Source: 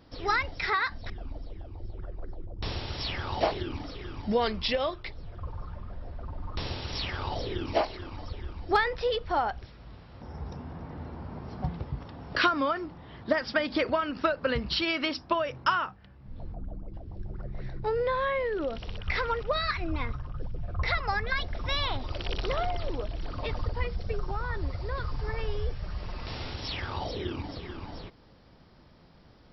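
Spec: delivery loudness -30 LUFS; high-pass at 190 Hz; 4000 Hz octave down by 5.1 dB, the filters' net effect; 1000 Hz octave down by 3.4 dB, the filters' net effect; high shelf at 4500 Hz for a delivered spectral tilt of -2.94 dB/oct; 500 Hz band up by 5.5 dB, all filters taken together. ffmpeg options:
-af "highpass=190,equalizer=f=500:t=o:g=8.5,equalizer=f=1k:t=o:g=-7,equalizer=f=4k:t=o:g=-4.5,highshelf=f=4.5k:g=-3.5"

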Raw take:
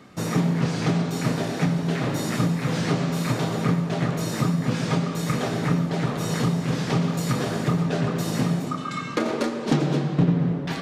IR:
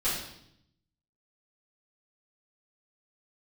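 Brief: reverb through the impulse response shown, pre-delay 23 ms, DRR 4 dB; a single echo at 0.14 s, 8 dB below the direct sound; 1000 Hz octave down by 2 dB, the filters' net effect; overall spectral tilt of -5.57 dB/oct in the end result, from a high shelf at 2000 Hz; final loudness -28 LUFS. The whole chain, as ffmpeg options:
-filter_complex "[0:a]equalizer=f=1k:t=o:g=-4,highshelf=f=2k:g=4.5,aecho=1:1:140:0.398,asplit=2[a][b];[1:a]atrim=start_sample=2205,adelay=23[c];[b][c]afir=irnorm=-1:irlink=0,volume=-13dB[d];[a][d]amix=inputs=2:normalize=0,volume=-6dB"

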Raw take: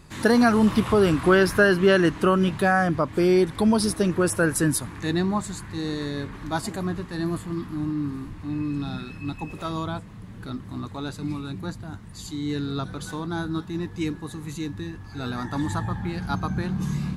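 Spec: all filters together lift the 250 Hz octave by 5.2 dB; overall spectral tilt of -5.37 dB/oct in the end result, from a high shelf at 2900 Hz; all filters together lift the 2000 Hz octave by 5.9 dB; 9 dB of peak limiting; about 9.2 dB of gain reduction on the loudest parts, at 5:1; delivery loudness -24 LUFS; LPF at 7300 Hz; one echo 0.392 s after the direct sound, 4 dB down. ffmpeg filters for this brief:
-af "lowpass=7.3k,equalizer=f=250:t=o:g=7,equalizer=f=2k:t=o:g=5,highshelf=f=2.9k:g=8.5,acompressor=threshold=-19dB:ratio=5,alimiter=limit=-18dB:level=0:latency=1,aecho=1:1:392:0.631,volume=2.5dB"

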